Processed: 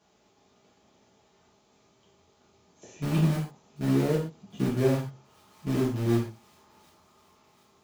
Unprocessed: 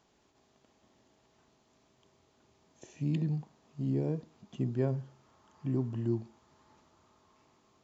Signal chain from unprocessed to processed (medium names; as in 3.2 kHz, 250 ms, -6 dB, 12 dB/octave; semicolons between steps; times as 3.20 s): high-pass 67 Hz 12 dB/octave; peaking EQ 1.8 kHz -3 dB 0.22 oct; in parallel at -8 dB: bit crusher 5-bit; on the sum: feedback echo behind a high-pass 740 ms, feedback 57%, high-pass 2.8 kHz, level -19 dB; gated-style reverb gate 160 ms falling, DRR -7.5 dB; trim -3 dB